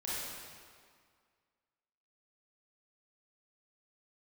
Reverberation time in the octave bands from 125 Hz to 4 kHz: 1.8, 2.0, 1.9, 2.0, 1.8, 1.6 s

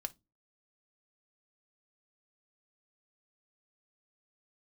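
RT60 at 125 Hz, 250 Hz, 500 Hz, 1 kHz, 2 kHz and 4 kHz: 0.35, 0.35, 0.25, 0.20, 0.15, 0.20 s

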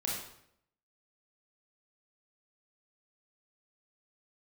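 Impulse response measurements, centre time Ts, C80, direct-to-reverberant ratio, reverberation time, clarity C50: 56 ms, 4.5 dB, -4.0 dB, 0.75 s, 1.0 dB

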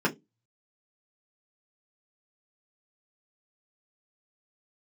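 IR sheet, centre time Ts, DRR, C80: 10 ms, -3.5 dB, 28.0 dB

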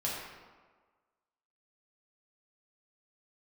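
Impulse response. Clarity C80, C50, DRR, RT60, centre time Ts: 2.5 dB, 0.0 dB, -6.0 dB, 1.5 s, 79 ms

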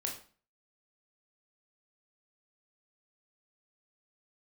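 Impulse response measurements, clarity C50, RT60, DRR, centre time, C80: 7.5 dB, 0.40 s, 0.0 dB, 25 ms, 12.5 dB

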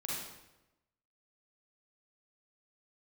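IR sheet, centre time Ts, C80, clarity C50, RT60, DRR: 80 ms, 2.0 dB, -2.5 dB, 1.0 s, -5.5 dB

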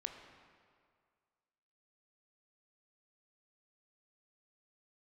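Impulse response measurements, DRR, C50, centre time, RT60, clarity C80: 4.5 dB, 6.0 dB, 41 ms, 2.0 s, 7.0 dB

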